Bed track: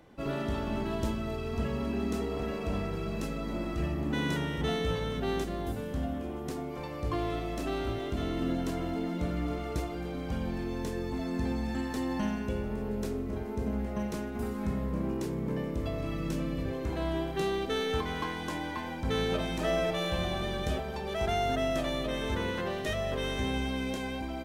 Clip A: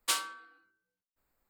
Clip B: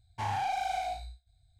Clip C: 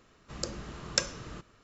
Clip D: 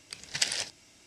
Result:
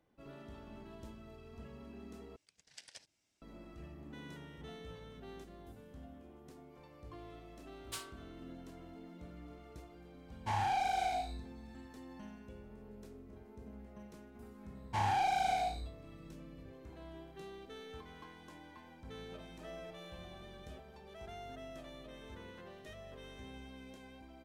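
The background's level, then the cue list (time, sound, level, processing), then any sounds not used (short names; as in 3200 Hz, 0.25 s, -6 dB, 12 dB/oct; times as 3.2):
bed track -19 dB
2.36 replace with D -17.5 dB + level quantiser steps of 16 dB
7.84 add A -14.5 dB
10.28 add B -1.5 dB
14.75 add B
not used: C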